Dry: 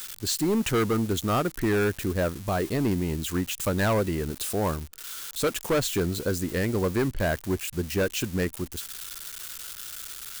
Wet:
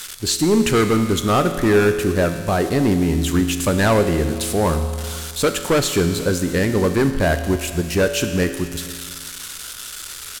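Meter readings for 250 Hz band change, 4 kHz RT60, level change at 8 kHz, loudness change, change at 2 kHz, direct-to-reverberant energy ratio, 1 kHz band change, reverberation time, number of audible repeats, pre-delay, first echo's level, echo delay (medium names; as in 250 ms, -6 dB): +8.5 dB, 2.0 s, +8.0 dB, +8.5 dB, +8.0 dB, 7.0 dB, +8.5 dB, 1.9 s, 1, 5 ms, -23.5 dB, 476 ms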